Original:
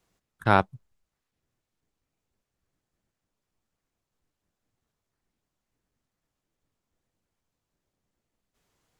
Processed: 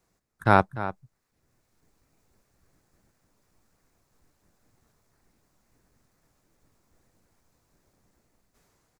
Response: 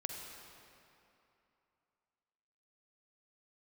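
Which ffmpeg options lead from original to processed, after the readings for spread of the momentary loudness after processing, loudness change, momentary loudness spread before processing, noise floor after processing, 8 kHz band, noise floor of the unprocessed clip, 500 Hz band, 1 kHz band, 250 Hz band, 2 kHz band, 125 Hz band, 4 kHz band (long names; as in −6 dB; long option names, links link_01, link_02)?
13 LU, 0.0 dB, 12 LU, −75 dBFS, +3.0 dB, −85 dBFS, +2.0 dB, +2.0 dB, +2.0 dB, +1.5 dB, +2.0 dB, −2.5 dB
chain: -filter_complex "[0:a]equalizer=frequency=3100:width=2.5:gain=-8,asplit=2[link_01][link_02];[link_02]adelay=297.4,volume=-14dB,highshelf=frequency=4000:gain=-6.69[link_03];[link_01][link_03]amix=inputs=2:normalize=0,dynaudnorm=framelen=100:gausssize=17:maxgain=12.5dB,volume=1.5dB"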